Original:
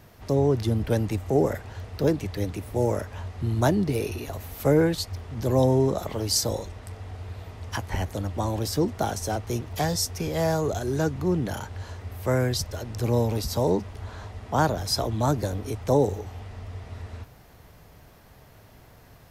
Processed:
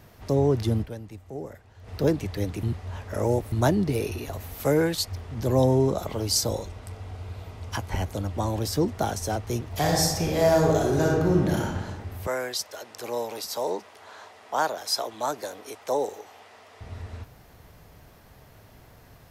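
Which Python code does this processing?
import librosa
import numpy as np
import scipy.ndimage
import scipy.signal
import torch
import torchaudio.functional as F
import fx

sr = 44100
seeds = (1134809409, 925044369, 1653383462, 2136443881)

y = fx.tilt_eq(x, sr, slope=1.5, at=(4.63, 5.05))
y = fx.notch(y, sr, hz=1800.0, q=12.0, at=(5.75, 8.33))
y = fx.reverb_throw(y, sr, start_s=9.69, length_s=2.07, rt60_s=1.3, drr_db=-2.0)
y = fx.highpass(y, sr, hz=550.0, slope=12, at=(12.27, 16.81))
y = fx.edit(y, sr, fx.fade_down_up(start_s=0.81, length_s=1.08, db=-14.5, fade_s=0.39, curve='exp'),
    fx.reverse_span(start_s=2.63, length_s=0.89), tone=tone)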